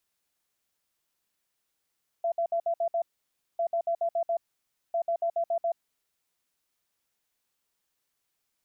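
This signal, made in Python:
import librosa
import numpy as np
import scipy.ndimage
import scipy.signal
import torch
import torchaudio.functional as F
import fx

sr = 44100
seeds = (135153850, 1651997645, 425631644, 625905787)

y = fx.beep_pattern(sr, wave='sine', hz=676.0, on_s=0.08, off_s=0.06, beeps=6, pause_s=0.57, groups=3, level_db=-24.0)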